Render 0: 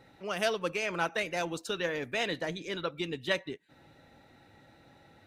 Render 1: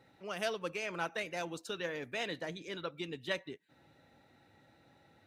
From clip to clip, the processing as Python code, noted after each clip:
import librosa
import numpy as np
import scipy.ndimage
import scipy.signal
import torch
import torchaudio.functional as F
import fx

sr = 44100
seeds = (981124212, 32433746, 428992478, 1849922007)

y = scipy.signal.sosfilt(scipy.signal.butter(2, 62.0, 'highpass', fs=sr, output='sos'), x)
y = y * 10.0 ** (-6.0 / 20.0)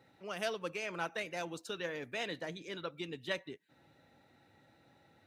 y = scipy.signal.sosfilt(scipy.signal.butter(2, 58.0, 'highpass', fs=sr, output='sos'), x)
y = y * 10.0 ** (-1.0 / 20.0)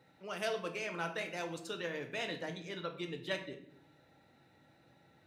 y = fx.room_shoebox(x, sr, seeds[0], volume_m3=150.0, walls='mixed', distance_m=0.5)
y = y * 10.0 ** (-1.0 / 20.0)